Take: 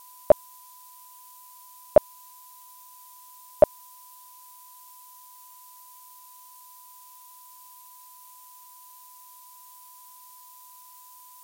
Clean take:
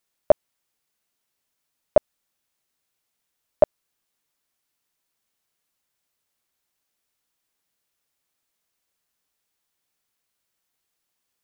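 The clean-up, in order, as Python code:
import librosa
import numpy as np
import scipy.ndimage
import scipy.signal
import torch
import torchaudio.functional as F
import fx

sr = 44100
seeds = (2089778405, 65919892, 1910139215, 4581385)

y = fx.notch(x, sr, hz=1000.0, q=30.0)
y = fx.noise_reduce(y, sr, print_start_s=4.22, print_end_s=4.72, reduce_db=30.0)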